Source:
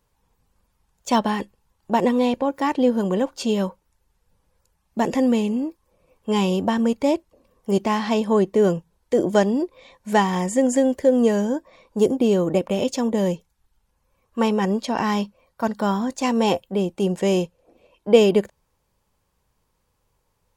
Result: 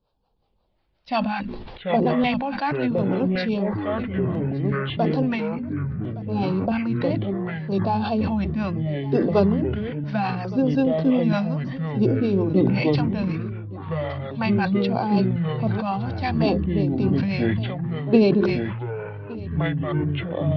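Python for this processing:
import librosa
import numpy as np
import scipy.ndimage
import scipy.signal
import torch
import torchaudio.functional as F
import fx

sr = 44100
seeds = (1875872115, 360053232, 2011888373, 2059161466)

y = scipy.signal.sosfilt(scipy.signal.butter(12, 5700.0, 'lowpass', fs=sr, output='sos'), x)
y = fx.low_shelf(y, sr, hz=190.0, db=-4.5)
y = fx.hum_notches(y, sr, base_hz=60, count=7)
y = fx.harmonic_tremolo(y, sr, hz=5.5, depth_pct=70, crossover_hz=420.0)
y = fx.formant_shift(y, sr, semitones=-3)
y = fx.filter_lfo_notch(y, sr, shape='square', hz=0.67, low_hz=410.0, high_hz=2000.0, q=0.76)
y = fx.echo_pitch(y, sr, ms=366, semitones=-5, count=3, db_per_echo=-3.0)
y = y + 10.0 ** (-19.5 / 20.0) * np.pad(y, (int(1166 * sr / 1000.0), 0))[:len(y)]
y = fx.sustainer(y, sr, db_per_s=34.0)
y = y * 10.0 ** (2.5 / 20.0)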